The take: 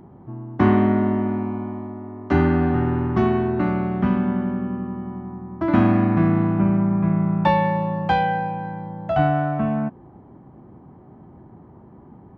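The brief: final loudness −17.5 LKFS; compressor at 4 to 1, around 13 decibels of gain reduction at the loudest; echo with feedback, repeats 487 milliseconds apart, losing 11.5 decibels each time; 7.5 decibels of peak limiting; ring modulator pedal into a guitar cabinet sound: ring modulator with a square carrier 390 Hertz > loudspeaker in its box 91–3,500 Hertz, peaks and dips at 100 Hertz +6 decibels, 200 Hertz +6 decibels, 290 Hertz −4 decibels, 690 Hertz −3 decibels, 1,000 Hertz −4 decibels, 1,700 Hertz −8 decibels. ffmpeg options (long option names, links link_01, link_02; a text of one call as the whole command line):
ffmpeg -i in.wav -af "acompressor=threshold=-28dB:ratio=4,alimiter=limit=-23.5dB:level=0:latency=1,aecho=1:1:487|974|1461:0.266|0.0718|0.0194,aeval=exprs='val(0)*sgn(sin(2*PI*390*n/s))':channel_layout=same,highpass=91,equalizer=frequency=100:width_type=q:width=4:gain=6,equalizer=frequency=200:width_type=q:width=4:gain=6,equalizer=frequency=290:width_type=q:width=4:gain=-4,equalizer=frequency=690:width_type=q:width=4:gain=-3,equalizer=frequency=1000:width_type=q:width=4:gain=-4,equalizer=frequency=1700:width_type=q:width=4:gain=-8,lowpass=frequency=3500:width=0.5412,lowpass=frequency=3500:width=1.3066,volume=14dB" out.wav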